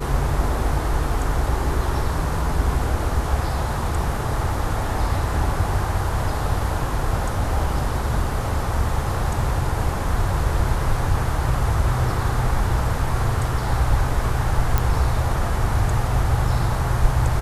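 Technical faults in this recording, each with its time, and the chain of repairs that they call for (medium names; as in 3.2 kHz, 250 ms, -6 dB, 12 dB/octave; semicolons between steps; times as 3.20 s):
14.78 s: pop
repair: de-click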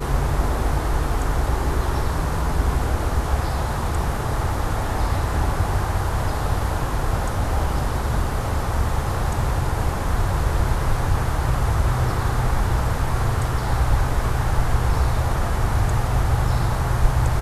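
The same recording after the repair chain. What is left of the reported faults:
nothing left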